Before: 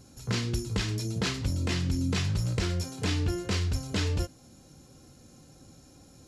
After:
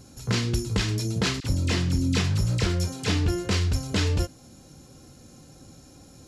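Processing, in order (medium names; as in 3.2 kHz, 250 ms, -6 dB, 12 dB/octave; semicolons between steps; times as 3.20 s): 1.40–3.26 s: phase dispersion lows, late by 44 ms, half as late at 1.3 kHz; trim +4.5 dB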